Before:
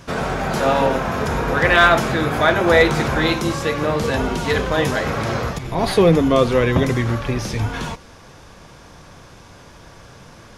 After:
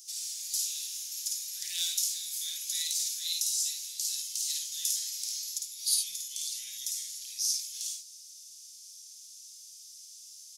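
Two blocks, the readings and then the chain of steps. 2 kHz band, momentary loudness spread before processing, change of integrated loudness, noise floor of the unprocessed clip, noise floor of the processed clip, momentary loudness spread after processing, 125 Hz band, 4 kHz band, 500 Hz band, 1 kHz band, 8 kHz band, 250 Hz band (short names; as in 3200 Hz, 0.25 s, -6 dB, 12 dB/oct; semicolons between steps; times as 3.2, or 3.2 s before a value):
-33.5 dB, 10 LU, -13.0 dB, -44 dBFS, -50 dBFS, 18 LU, under -40 dB, -5.5 dB, under -40 dB, under -40 dB, +7.5 dB, under -40 dB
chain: inverse Chebyshev high-pass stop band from 1300 Hz, stop band 70 dB; on a send: early reflections 53 ms -3 dB, 73 ms -8.5 dB; on the sum: gain +6 dB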